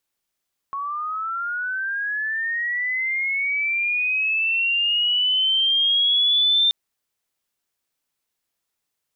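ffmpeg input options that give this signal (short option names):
-f lavfi -i "aevalsrc='pow(10,(-25+10.5*t/5.98)/20)*sin(2*PI*(1100*t+2500*t*t/(2*5.98)))':d=5.98:s=44100"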